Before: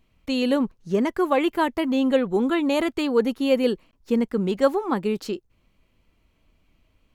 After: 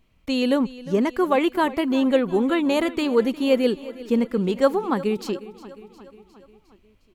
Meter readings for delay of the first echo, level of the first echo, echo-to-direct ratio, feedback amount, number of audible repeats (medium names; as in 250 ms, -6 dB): 357 ms, -17.5 dB, -15.5 dB, 59%, 4